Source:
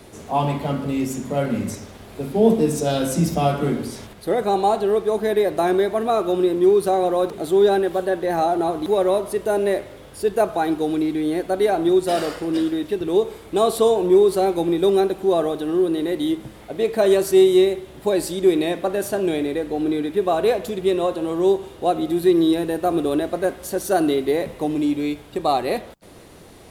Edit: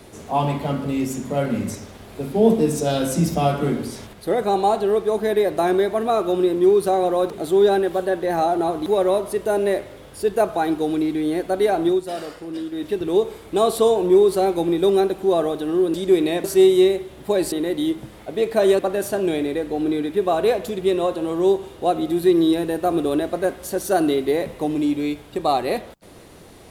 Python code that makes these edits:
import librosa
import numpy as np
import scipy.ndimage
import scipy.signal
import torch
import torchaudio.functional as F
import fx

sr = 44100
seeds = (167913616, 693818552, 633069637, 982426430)

y = fx.edit(x, sr, fx.fade_down_up(start_s=11.87, length_s=1.0, db=-8.0, fade_s=0.16),
    fx.swap(start_s=15.94, length_s=1.27, other_s=18.29, other_length_s=0.5), tone=tone)